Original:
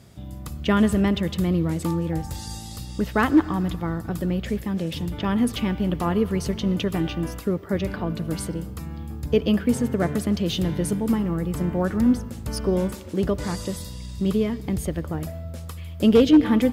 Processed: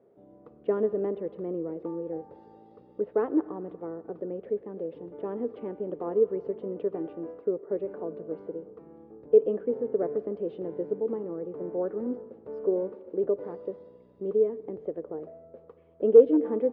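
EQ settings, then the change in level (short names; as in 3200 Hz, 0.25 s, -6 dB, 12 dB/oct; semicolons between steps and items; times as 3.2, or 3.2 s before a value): ladder band-pass 490 Hz, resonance 65%; air absorption 180 m; low shelf 460 Hz +5.5 dB; +2.0 dB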